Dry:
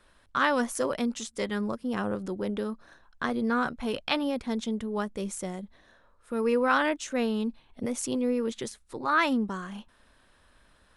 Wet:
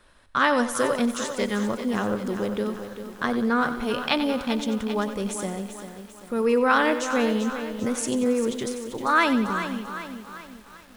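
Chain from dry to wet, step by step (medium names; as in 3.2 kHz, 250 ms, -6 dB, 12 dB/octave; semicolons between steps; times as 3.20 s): thinning echo 92 ms, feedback 55%, high-pass 340 Hz, level -11.5 dB; bit-crushed delay 394 ms, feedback 55%, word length 8-bit, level -9.5 dB; trim +4 dB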